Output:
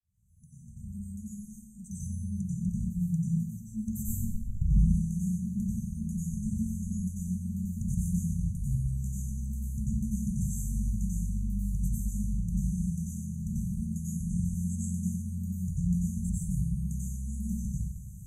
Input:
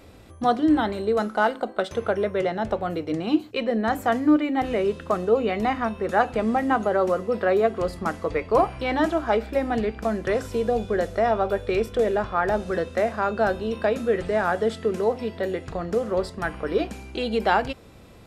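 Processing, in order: opening faded in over 2.44 s; soft clip -11.5 dBFS, distortion -21 dB; 4.08–4.79 tilt -3 dB/oct; brick-wall FIR band-stop 200–5900 Hz; plate-style reverb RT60 0.78 s, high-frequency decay 0.9×, pre-delay 80 ms, DRR -7 dB; dynamic EQ 270 Hz, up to +4 dB, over -52 dBFS, Q 2

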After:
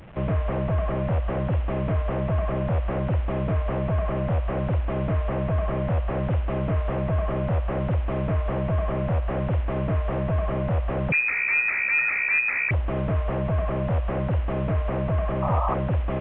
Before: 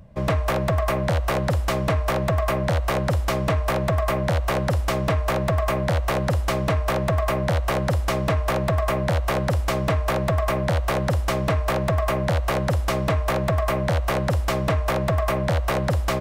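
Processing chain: delta modulation 16 kbps, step -38 dBFS; 11.12–12.71 inverted band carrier 2500 Hz; 15.42–15.75 painted sound noise 550–1300 Hz -26 dBFS; gain -1 dB

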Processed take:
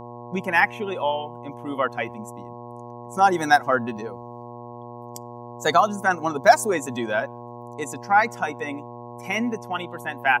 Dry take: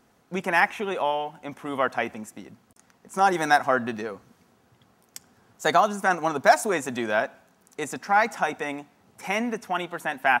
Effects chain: per-bin expansion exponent 1.5; buzz 120 Hz, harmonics 9, -43 dBFS -1 dB/oct; gain +4.5 dB

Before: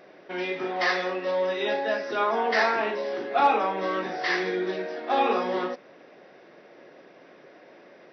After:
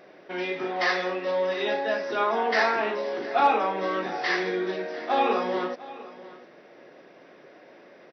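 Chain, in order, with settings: echo 0.7 s -18 dB

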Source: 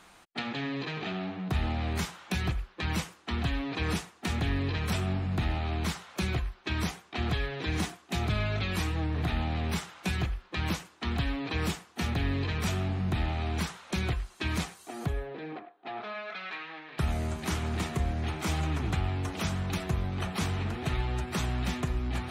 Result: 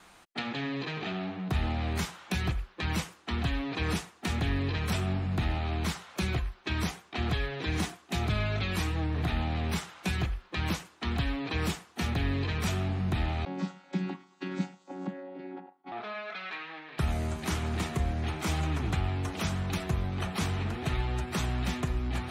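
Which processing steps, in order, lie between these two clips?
13.45–15.92 chord vocoder bare fifth, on F#3; gate with hold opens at -54 dBFS

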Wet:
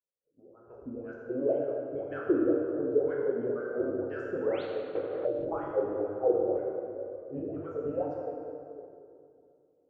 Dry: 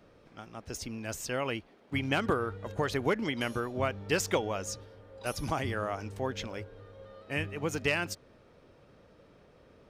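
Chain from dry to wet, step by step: expander -49 dBFS; tilt -3 dB/oct; on a send: analogue delay 0.299 s, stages 4096, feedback 55%, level -17 dB; on the sum: low-pass opened by the level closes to 330 Hz, open at -24 dBFS; AGC gain up to 12 dB; graphic EQ 125/250/500/1000/2000/4000 Hz +3/-11/+12/-7/-10/-3 dB; 4.41–4.63 painted sound rise 740–4700 Hz -19 dBFS; wah 2 Hz 260–1600 Hz, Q 13; plate-style reverb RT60 2.4 s, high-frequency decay 0.65×, DRR -4 dB; 4.95–5.45 three-band squash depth 100%; gain -4 dB

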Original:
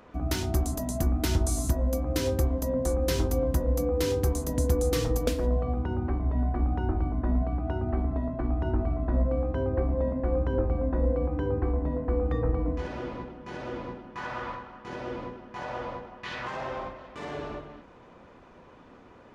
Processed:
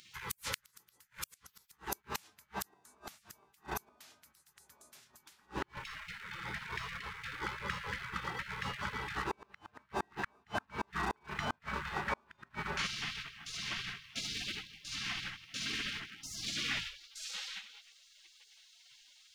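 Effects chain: high-pass sweep 560 Hz -> 62 Hz, 16.7–17.2; in parallel at -11 dB: crossover distortion -40 dBFS; on the sum: spectral gate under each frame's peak -30 dB weak; flipped gate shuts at -37 dBFS, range -37 dB; gain +15 dB

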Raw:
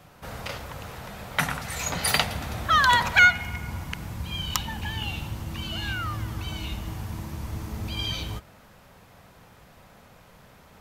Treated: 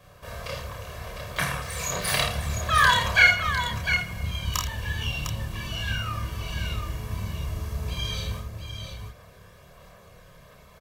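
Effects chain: on a send: tapped delay 51/81/704 ms -7.5/-13.5/-7 dB; on the sum: chorus voices 2, 0.76 Hz, delay 29 ms, depth 1.7 ms; comb 1.8 ms, depth 75%; harmoniser +12 st -16 dB

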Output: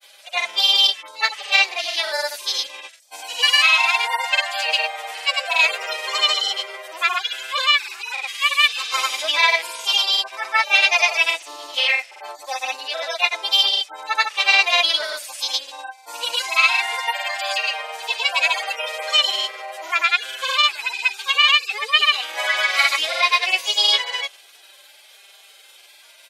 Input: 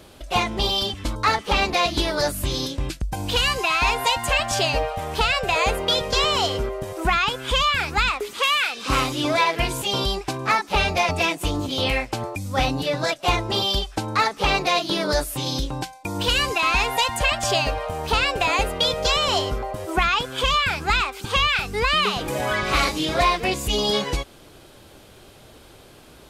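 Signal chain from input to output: median-filter separation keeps harmonic; HPF 650 Hz 24 dB/oct; resonant high shelf 1600 Hz +7 dB, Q 1.5; grains, pitch spread up and down by 0 st; gain +2.5 dB

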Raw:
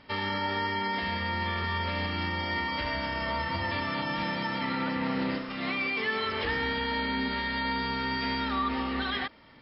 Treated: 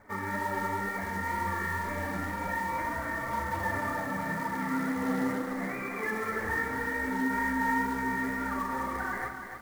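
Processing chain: steep low-pass 2100 Hz 72 dB/oct; low shelf 240 Hz -2.5 dB; in parallel at +2 dB: limiter -27 dBFS, peak gain reduction 6.5 dB; on the sum: flange 0.33 Hz, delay 9.3 ms, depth 1.7 ms, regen -9%; short-mantissa float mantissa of 2-bit; flange 2 Hz, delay 1.1 ms, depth 6.9 ms, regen +29%; on a send at -8.5 dB: reverb RT60 0.40 s, pre-delay 42 ms; on the sum: lo-fi delay 0.295 s, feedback 35%, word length 9-bit, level -7 dB

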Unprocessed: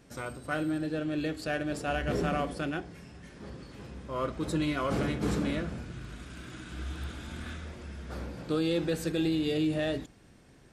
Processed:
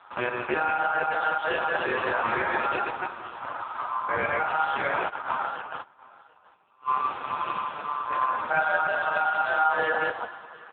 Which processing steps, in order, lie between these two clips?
reverse delay 0.153 s, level -5 dB; 3.58–4.18 low shelf 210 Hz +4.5 dB; in parallel at -2 dB: negative-ratio compressor -34 dBFS, ratio -0.5; on the sum: ring modulator 1100 Hz; Schroeder reverb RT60 1.7 s, combs from 30 ms, DRR 9.5 dB; dynamic EQ 340 Hz, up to +3 dB, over -46 dBFS, Q 0.74; 5.08–6.88 gate -27 dBFS, range -30 dB; on a send: echo 0.723 s -22.5 dB; on the sum: gain +6 dB; AMR-NB 5.15 kbps 8000 Hz

